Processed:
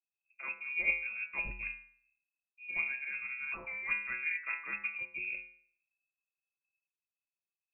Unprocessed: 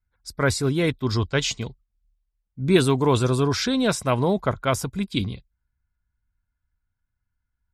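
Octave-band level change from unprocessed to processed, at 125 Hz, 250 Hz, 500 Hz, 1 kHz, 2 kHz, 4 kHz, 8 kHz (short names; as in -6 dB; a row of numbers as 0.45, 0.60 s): under -35 dB, -37.0 dB, -33.5 dB, -22.0 dB, -1.5 dB, under -30 dB, under -40 dB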